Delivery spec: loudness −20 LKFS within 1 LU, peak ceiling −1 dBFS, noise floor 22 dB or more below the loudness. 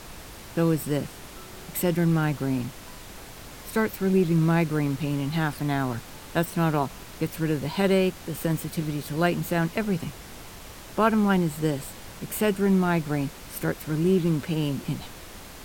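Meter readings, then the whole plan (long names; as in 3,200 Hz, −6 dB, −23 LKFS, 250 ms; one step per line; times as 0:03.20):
background noise floor −43 dBFS; target noise floor −48 dBFS; integrated loudness −26.0 LKFS; sample peak −8.5 dBFS; target loudness −20.0 LKFS
→ noise reduction from a noise print 6 dB
level +6 dB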